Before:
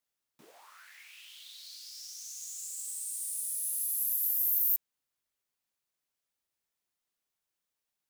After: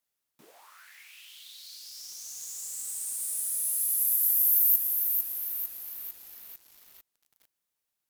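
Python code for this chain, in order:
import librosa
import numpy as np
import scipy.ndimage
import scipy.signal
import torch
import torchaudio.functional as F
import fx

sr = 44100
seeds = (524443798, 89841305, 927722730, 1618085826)

y = fx.peak_eq(x, sr, hz=13000.0, db=4.5, octaves=0.75)
y = fx.echo_crushed(y, sr, ms=450, feedback_pct=55, bits=8, wet_db=-5.0)
y = F.gain(torch.from_numpy(y), 1.0).numpy()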